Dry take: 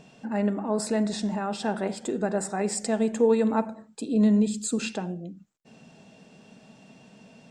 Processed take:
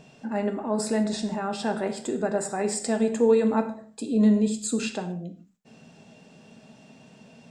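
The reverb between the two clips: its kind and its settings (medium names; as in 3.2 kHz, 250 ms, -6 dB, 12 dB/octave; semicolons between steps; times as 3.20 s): gated-style reverb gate 180 ms falling, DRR 7.5 dB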